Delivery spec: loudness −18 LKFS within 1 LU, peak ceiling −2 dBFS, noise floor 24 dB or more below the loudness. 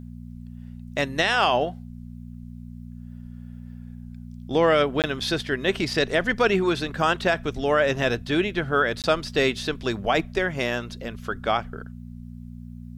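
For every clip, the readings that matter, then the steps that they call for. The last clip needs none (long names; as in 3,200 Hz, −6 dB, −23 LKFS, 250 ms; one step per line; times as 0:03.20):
number of dropouts 2; longest dropout 18 ms; mains hum 60 Hz; hum harmonics up to 240 Hz; level of the hum −36 dBFS; integrated loudness −23.5 LKFS; sample peak −9.5 dBFS; target loudness −18.0 LKFS
→ repair the gap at 0:05.02/0:09.02, 18 ms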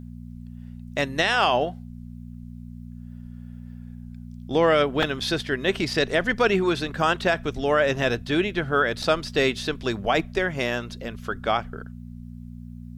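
number of dropouts 0; mains hum 60 Hz; hum harmonics up to 240 Hz; level of the hum −36 dBFS
→ hum removal 60 Hz, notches 4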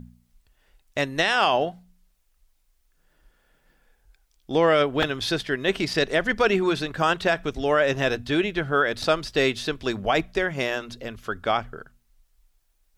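mains hum none found; integrated loudness −23.5 LKFS; sample peak −9.5 dBFS; target loudness −18.0 LKFS
→ level +5.5 dB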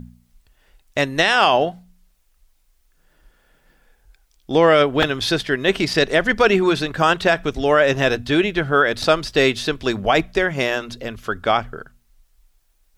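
integrated loudness −18.0 LKFS; sample peak −4.0 dBFS; background noise floor −62 dBFS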